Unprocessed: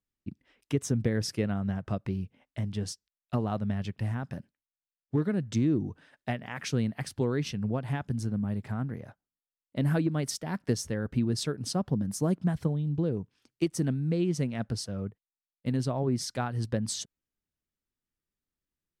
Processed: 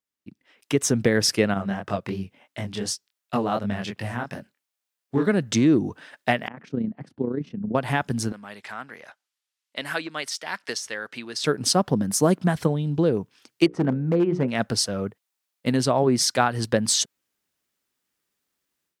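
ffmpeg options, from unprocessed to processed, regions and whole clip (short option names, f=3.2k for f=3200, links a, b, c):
-filter_complex "[0:a]asettb=1/sr,asplit=3[a][b][c];[a]atrim=end=1.544[d];[b]atrim=start=1.54:end=5.27,asetpts=PTS-STARTPTS,afade=t=in:d=0.004:c=qsin,afade=t=out:st=3.726:d=0.004:c=qsin,highpass=56,flanger=delay=20:depth=5.6:speed=2.8[e];[c]atrim=start=5.266[f];[d][e]acrossfade=d=0.004:c1=hsin:c2=qsin[g];[g][f]acrossfade=d=0.004:c1=qsin:c2=hsin,asettb=1/sr,asplit=3[h][i][j];[h]atrim=end=6.484[k];[i]atrim=start=6.48:end=7.75,asetpts=PTS-STARTPTS,afade=t=in:d=0.004:c=qsin,afade=t=out:st=1.266:d=0.004:c=qsin,bandpass=f=220:t=q:w=1.4,tremolo=f=30:d=0.621[l];[j]atrim=start=7.746[m];[k][l]acrossfade=d=0.004:c1=hsin:c2=qsin[n];[n][m]acrossfade=d=0.004:c1=qsin:c2=hsin,asettb=1/sr,asplit=3[o][p][q];[o]atrim=end=8.324[r];[p]atrim=start=8.32:end=11.44,asetpts=PTS-STARTPTS,afade=t=in:d=0.004:c=qsin,afade=t=out:st=3.116:d=0.004:c=qsin,deesser=0.9,bandpass=f=3.6k:t=q:w=0.55[s];[q]atrim=start=11.436[t];[r][s]acrossfade=d=0.004:c1=hsin:c2=qsin[u];[u][t]acrossfade=d=0.004:c1=qsin:c2=hsin,asettb=1/sr,asplit=3[v][w][x];[v]atrim=end=13.664[y];[w]atrim=start=13.66:end=14.48,asetpts=PTS-STARTPTS,afade=t=in:d=0.004:c=qsin,afade=t=out:st=0.816:d=0.004:c=qsin,lowpass=1.3k,bandreject=f=60:t=h:w=6,bandreject=f=120:t=h:w=6,bandreject=f=180:t=h:w=6,bandreject=f=240:t=h:w=6,bandreject=f=300:t=h:w=6,bandreject=f=360:t=h:w=6,bandreject=f=420:t=h:w=6,bandreject=f=480:t=h:w=6,bandreject=f=540:t=h:w=6,asoftclip=type=hard:threshold=-22.5dB[z];[x]atrim=start=14.476[aa];[y][z]acrossfade=d=0.004:c1=hsin:c2=qsin[ab];[ab][aa]acrossfade=d=0.004:c1=qsin:c2=hsin,deesser=0.6,highpass=f=500:p=1,dynaudnorm=f=410:g=3:m=12.5dB,volume=2dB"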